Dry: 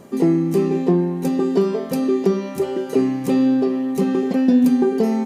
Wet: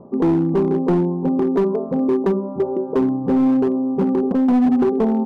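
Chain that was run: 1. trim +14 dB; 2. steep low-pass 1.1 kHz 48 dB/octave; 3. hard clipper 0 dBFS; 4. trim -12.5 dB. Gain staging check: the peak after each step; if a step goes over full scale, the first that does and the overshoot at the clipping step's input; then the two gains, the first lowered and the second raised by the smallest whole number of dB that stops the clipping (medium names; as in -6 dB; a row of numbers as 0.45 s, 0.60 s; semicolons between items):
+9.0 dBFS, +9.0 dBFS, 0.0 dBFS, -12.5 dBFS; step 1, 9.0 dB; step 1 +5 dB, step 4 -3.5 dB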